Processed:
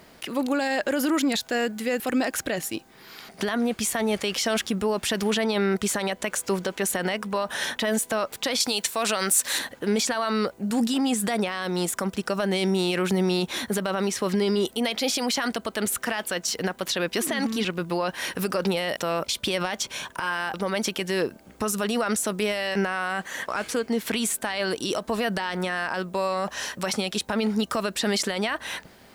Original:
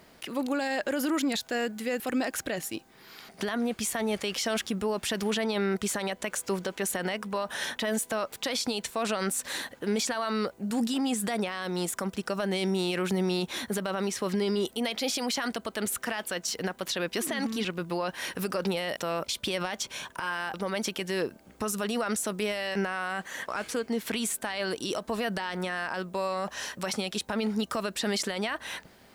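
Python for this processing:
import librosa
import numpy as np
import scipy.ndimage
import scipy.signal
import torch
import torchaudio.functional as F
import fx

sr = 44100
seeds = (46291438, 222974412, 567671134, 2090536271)

y = fx.tilt_eq(x, sr, slope=2.0, at=(8.6, 9.59))
y = F.gain(torch.from_numpy(y), 4.5).numpy()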